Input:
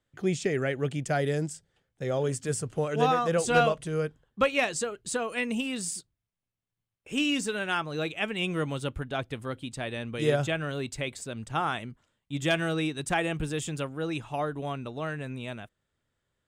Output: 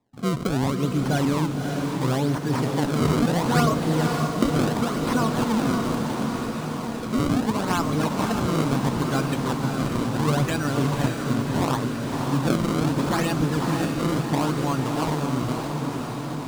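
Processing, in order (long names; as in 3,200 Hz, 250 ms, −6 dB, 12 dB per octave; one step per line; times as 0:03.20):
spectral magnitudes quantised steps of 30 dB
in parallel at −2.5 dB: compressor whose output falls as the input rises −31 dBFS
on the sum: feedback delay with all-pass diffusion 1,587 ms, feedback 65%, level −11 dB
sample-and-hold swept by an LFO 29×, swing 160% 0.73 Hz
octave-band graphic EQ 125/250/1,000/4,000/8,000 Hz +9/+11/+11/+5/+5 dB
on a send: feedback delay with all-pass diffusion 569 ms, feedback 54%, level −4 dB
on the sum: level −7.5 dB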